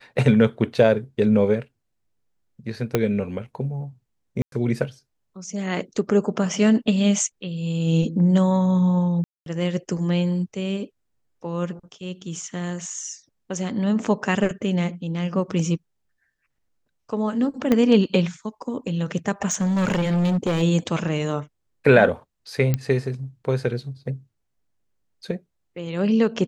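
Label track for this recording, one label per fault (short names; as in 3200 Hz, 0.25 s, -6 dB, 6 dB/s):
2.950000	2.950000	pop -6 dBFS
4.420000	4.520000	gap 0.102 s
9.240000	9.460000	gap 0.222 s
17.720000	17.720000	pop -8 dBFS
19.510000	20.630000	clipped -18 dBFS
22.740000	22.740000	pop -9 dBFS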